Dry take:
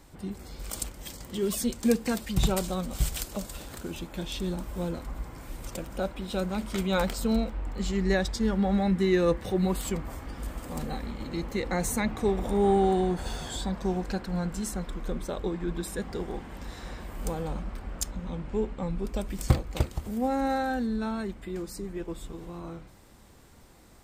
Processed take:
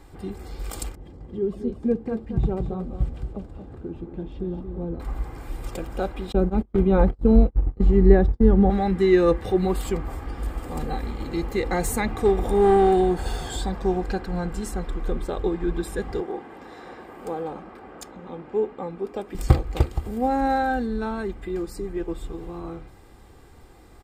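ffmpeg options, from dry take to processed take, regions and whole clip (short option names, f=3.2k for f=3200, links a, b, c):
-filter_complex "[0:a]asettb=1/sr,asplit=3[a][b][c];[a]atrim=end=0.954[d];[b]atrim=start=0.95:end=5,asetpts=PTS-STARTPTS,afade=t=in:d=0.004:c=qsin,afade=t=out:st=4.046:d=0.004:c=qsin,bandpass=f=150:t=q:w=0.53,aecho=1:1:226:0.376,atrim=end_sample=178605[e];[c]atrim=start=4.996[f];[d][e]acrossfade=d=0.004:c1=hsin:c2=qsin[g];[g][f]acrossfade=d=0.004:c1=qsin:c2=hsin,asettb=1/sr,asplit=3[h][i][j];[h]atrim=end=6.324[k];[i]atrim=start=6.32:end=8.7,asetpts=PTS-STARTPTS,afade=t=in:d=0.004:c=qsin,afade=t=out:st=2.376:d=0.004:c=qsin,acrossover=split=2800[l][m];[m]acompressor=threshold=-50dB:ratio=4:attack=1:release=60[n];[l][n]amix=inputs=2:normalize=0,agate=range=-37dB:threshold=-32dB:ratio=16:release=100:detection=peak,tiltshelf=f=740:g=9[o];[j]atrim=start=8.696[p];[k][o]acrossfade=d=0.004:c1=hsin:c2=qsin[q];[q][p]acrossfade=d=0.004:c1=qsin:c2=hsin,asettb=1/sr,asplit=3[r][s][t];[r]atrim=end=10.984[u];[s]atrim=start=10.98:end=13.77,asetpts=PTS-STARTPTS,afade=t=in:d=0.004:c=qsin,afade=t=out:st=2.786:d=0.004:c=qsin,highshelf=f=6.3k:g=7,aeval=exprs='clip(val(0),-1,0.1)':c=same[v];[t]atrim=start=13.766[w];[u][v]acrossfade=d=0.004:c1=hsin:c2=qsin[x];[x][w]acrossfade=d=0.004:c1=qsin:c2=hsin,asettb=1/sr,asplit=3[y][z][aa];[y]atrim=end=16.204[ab];[z]atrim=start=16.2:end=19.35,asetpts=PTS-STARTPTS,afade=t=in:d=0.004:c=qsin,afade=t=out:st=3.146:d=0.004:c=qsin,highpass=250,highshelf=f=2.8k:g=-9[ac];[aa]atrim=start=19.346[ad];[ab][ac]acrossfade=d=0.004:c1=hsin:c2=qsin[ae];[ae][ad]acrossfade=d=0.004:c1=qsin:c2=hsin,highshelf=f=3k:g=-8.5,bandreject=f=6.1k:w=12,aecho=1:1:2.5:0.41,volume=5dB"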